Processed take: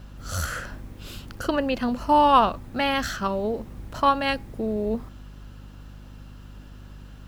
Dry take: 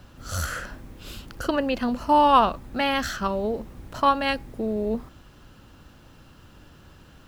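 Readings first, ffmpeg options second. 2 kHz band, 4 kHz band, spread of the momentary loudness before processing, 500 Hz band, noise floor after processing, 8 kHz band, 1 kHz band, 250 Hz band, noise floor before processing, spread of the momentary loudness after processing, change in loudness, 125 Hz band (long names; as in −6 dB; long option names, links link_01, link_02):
0.0 dB, 0.0 dB, 21 LU, 0.0 dB, −44 dBFS, 0.0 dB, 0.0 dB, 0.0 dB, −52 dBFS, 21 LU, 0.0 dB, +1.5 dB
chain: -af "aeval=exprs='val(0)+0.00794*(sin(2*PI*50*n/s)+sin(2*PI*2*50*n/s)/2+sin(2*PI*3*50*n/s)/3+sin(2*PI*4*50*n/s)/4+sin(2*PI*5*50*n/s)/5)':channel_layout=same"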